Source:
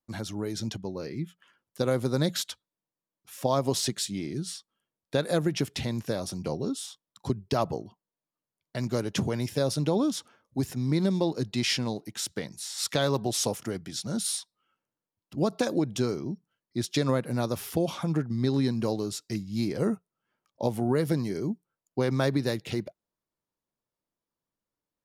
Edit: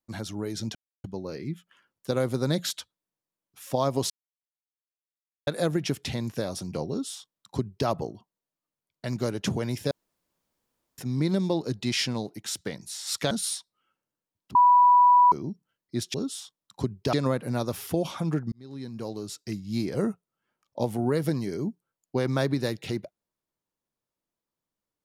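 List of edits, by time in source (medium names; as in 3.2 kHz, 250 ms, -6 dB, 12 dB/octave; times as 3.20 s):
0.75 s: insert silence 0.29 s
3.81–5.18 s: mute
6.60–7.59 s: copy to 16.96 s
9.62–10.69 s: room tone
13.02–14.13 s: delete
15.37–16.14 s: bleep 983 Hz -13.5 dBFS
18.35–19.51 s: fade in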